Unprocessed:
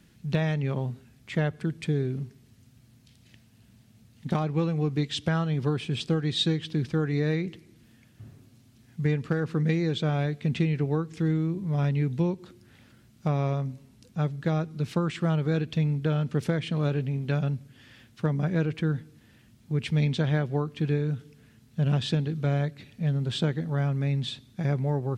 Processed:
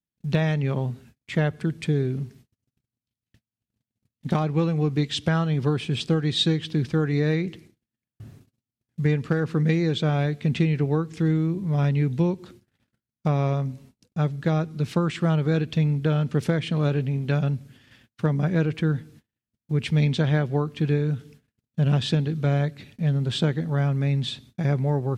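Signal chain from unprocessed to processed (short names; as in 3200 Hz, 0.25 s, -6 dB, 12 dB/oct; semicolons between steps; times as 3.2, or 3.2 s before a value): gate -51 dBFS, range -40 dB; gain +3.5 dB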